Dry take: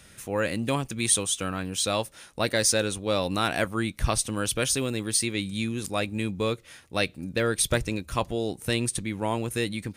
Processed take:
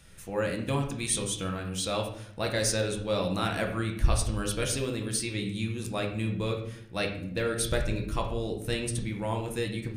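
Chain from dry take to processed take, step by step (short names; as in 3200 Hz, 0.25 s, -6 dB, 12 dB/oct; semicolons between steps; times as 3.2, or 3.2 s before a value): low shelf 82 Hz +11.5 dB; reverb RT60 0.70 s, pre-delay 6 ms, DRR 1.5 dB; gain -6.5 dB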